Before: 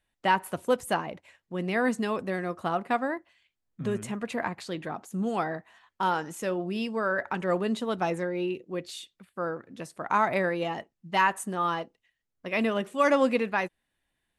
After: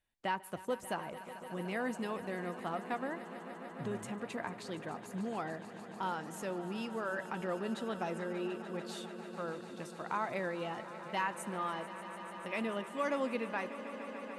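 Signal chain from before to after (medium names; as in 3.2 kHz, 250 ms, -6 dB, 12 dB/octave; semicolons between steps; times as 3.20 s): compression 1.5:1, threshold -32 dBFS, peak gain reduction 5.5 dB; echo with a slow build-up 147 ms, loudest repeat 5, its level -16 dB; trim -7 dB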